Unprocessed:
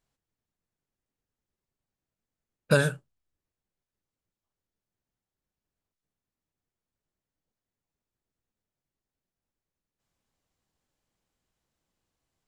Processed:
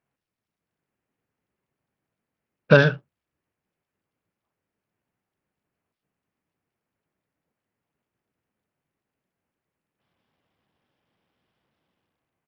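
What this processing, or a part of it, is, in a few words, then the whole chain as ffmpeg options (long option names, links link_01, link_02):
Bluetooth headset: -af "highpass=110,dynaudnorm=framelen=150:gausssize=9:maxgain=7dB,aresample=8000,aresample=44100,volume=2dB" -ar 44100 -c:a sbc -b:a 64k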